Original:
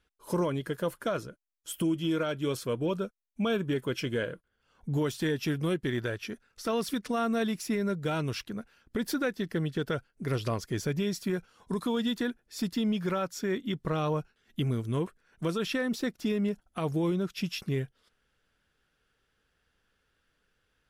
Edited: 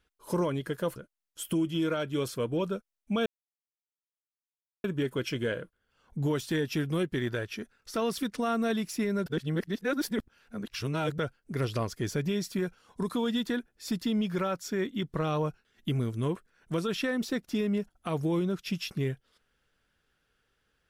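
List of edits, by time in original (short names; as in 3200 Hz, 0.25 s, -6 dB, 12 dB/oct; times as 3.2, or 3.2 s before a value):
0.96–1.25 cut
3.55 insert silence 1.58 s
7.97–9.89 reverse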